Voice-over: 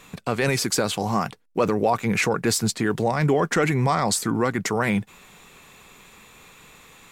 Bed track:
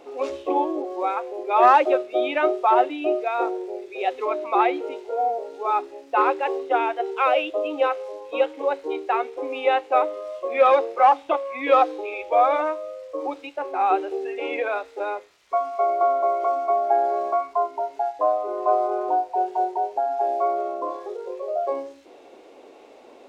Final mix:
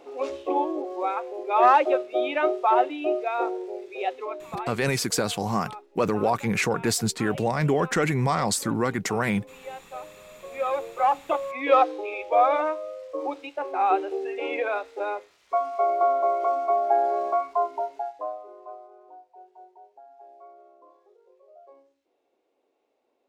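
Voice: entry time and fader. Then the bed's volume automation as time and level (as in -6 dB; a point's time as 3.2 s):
4.40 s, -2.5 dB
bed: 4.01 s -2.5 dB
4.81 s -19 dB
10.01 s -19 dB
11.43 s -1.5 dB
17.8 s -1.5 dB
18.92 s -26 dB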